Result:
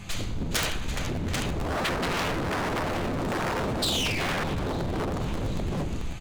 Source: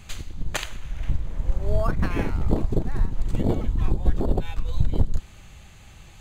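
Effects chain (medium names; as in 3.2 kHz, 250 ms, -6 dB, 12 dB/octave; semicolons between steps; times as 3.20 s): high-pass 450 Hz 6 dB/octave; tilt EQ -4 dB/octave; multi-tap echo 67/83/87/418/722/789 ms -13/-17.5/-10.5/-11/-16/-6 dB; reverberation RT60 0.45 s, pre-delay 6 ms, DRR 1.5 dB; painted sound fall, 3.82–4.44 s, 1.4–4.2 kHz -33 dBFS; compression 16:1, threshold -17 dBFS, peak gain reduction 8.5 dB; wavefolder -28.5 dBFS; treble shelf 3.1 kHz +11 dB; crackling interface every 0.11 s, samples 512, repeat, from 0.82 s; trim +4.5 dB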